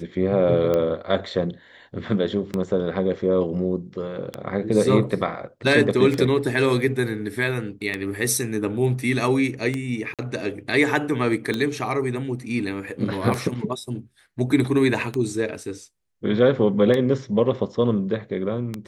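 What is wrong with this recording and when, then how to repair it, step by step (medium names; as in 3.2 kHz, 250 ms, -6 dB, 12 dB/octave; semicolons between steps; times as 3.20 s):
tick 33 1/3 rpm -12 dBFS
10.14–10.19 s: dropout 47 ms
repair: de-click; interpolate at 10.14 s, 47 ms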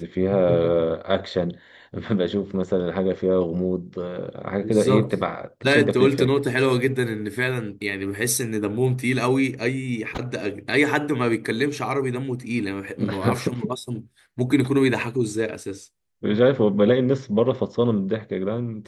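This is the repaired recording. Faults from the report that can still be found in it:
nothing left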